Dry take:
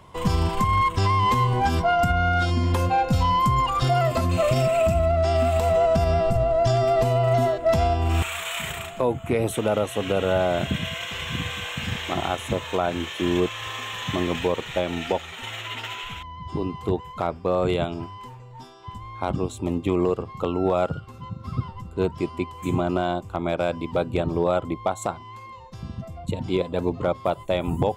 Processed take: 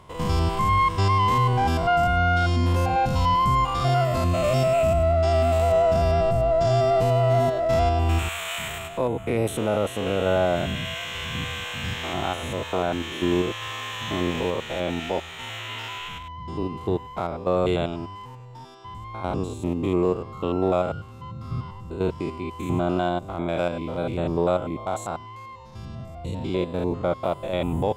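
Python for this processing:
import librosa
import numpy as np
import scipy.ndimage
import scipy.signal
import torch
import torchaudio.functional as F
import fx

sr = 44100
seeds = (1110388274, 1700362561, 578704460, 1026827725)

y = fx.spec_steps(x, sr, hold_ms=100)
y = y * librosa.db_to_amplitude(1.0)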